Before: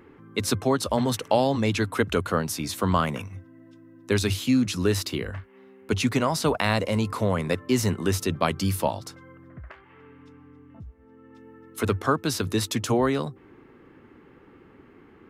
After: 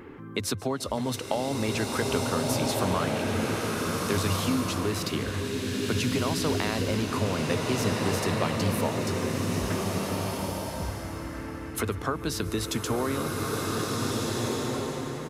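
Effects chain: compression 3:1, threshold -37 dBFS, peak gain reduction 15.5 dB; delay 143 ms -20.5 dB; swelling reverb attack 1770 ms, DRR -2 dB; trim +6.5 dB

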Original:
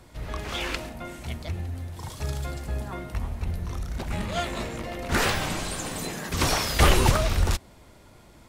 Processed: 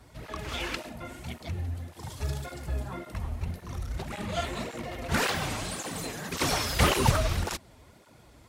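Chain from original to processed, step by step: cancelling through-zero flanger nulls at 1.8 Hz, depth 6.3 ms

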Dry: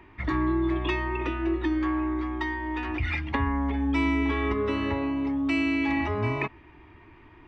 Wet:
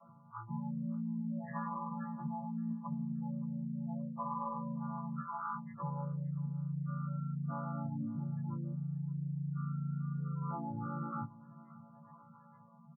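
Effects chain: vocoder on a held chord major triad, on G3; tilt EQ +4.5 dB/octave; doubling 15 ms -5.5 dB; spectral gate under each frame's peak -10 dB strong; rotary cabinet horn 1.1 Hz; speed mistake 78 rpm record played at 45 rpm; static phaser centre 2.3 kHz, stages 8; reverse; compression, threshold -47 dBFS, peak gain reduction 12.5 dB; reverse; feedback delay 574 ms, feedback 30%, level -21 dB; trim +11 dB

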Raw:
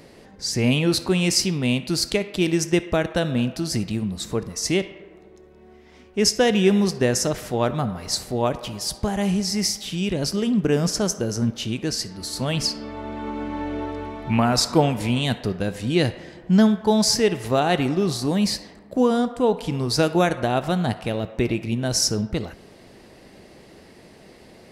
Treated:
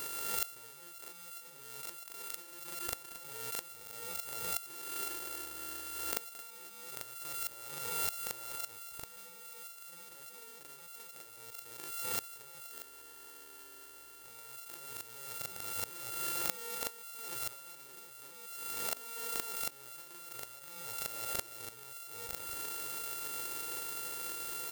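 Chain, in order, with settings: sorted samples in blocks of 64 samples; comb 2.2 ms, depth 65%; compression 8:1, threshold -31 dBFS, peak gain reduction 19.5 dB; RIAA curve recording; inverted gate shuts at -12 dBFS, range -24 dB; reverse echo 40 ms -6 dB; swell ahead of each attack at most 35 dB/s

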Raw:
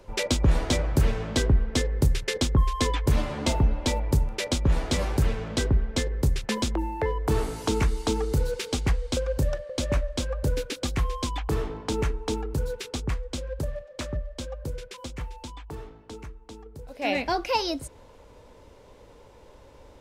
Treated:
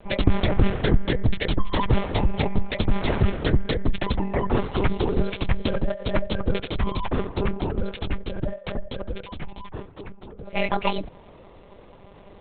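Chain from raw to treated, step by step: monotone LPC vocoder at 8 kHz 200 Hz; granular stretch 0.62×, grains 46 ms; trim +4.5 dB

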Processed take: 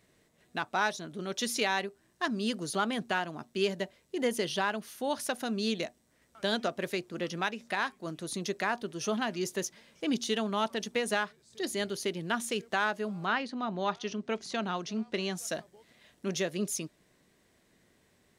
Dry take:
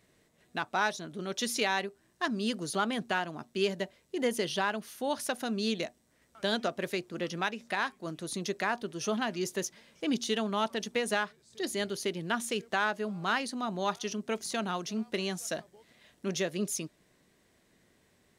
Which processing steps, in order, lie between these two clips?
13.25–15.34 s: low-pass 3.3 kHz -> 6.8 kHz 12 dB/octave

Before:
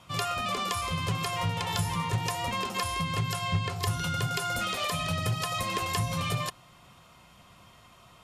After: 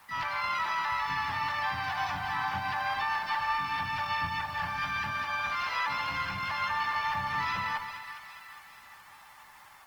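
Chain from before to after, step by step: tracing distortion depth 0.22 ms; steep low-pass 3.2 kHz 36 dB/octave; resonant low shelf 710 Hz -11.5 dB, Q 3; peak limiter -22 dBFS, peak gain reduction 7.5 dB; wide varispeed 0.835×; word length cut 10-bit, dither triangular; harmony voices +5 st -2 dB, +12 st -3 dB; two-band feedback delay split 1.3 kHz, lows 132 ms, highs 413 ms, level -9 dB; trim -5 dB; Opus 20 kbps 48 kHz

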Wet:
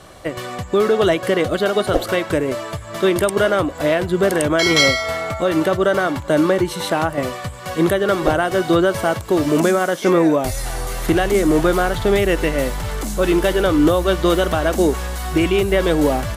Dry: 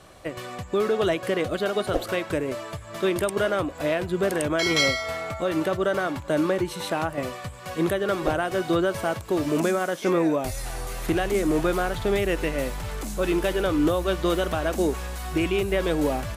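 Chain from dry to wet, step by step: band-stop 2.5 kHz, Q 14; trim +7.5 dB

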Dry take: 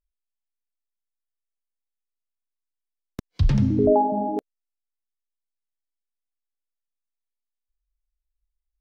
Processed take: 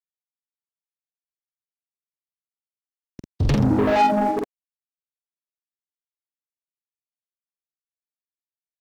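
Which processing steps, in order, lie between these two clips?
reverb removal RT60 0.52 s; expander -22 dBFS; high-pass 69 Hz 12 dB/octave; peak limiter -15.5 dBFS, peak gain reduction 7 dB; waveshaping leveller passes 3; doubling 47 ms -3.5 dB

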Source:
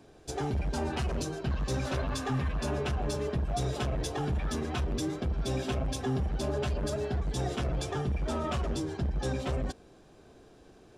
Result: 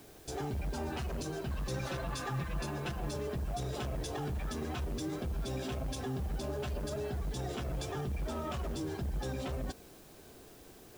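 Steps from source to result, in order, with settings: peak limiter -29.5 dBFS, peak gain reduction 8 dB; 1.66–3.11 s: comb 5.9 ms, depth 68%; word length cut 10-bit, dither triangular

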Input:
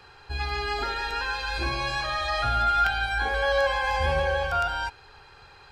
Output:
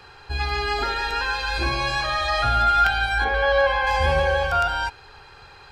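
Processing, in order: 3.24–3.87 s: low-pass 3.6 kHz 12 dB/octave; trim +4.5 dB

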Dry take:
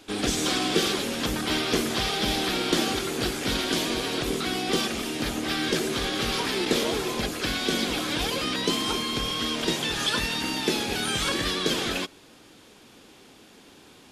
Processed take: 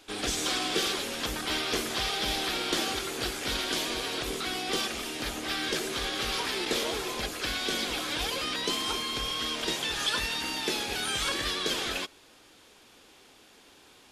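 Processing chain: peaking EQ 180 Hz -9 dB 2.1 oct; trim -2.5 dB

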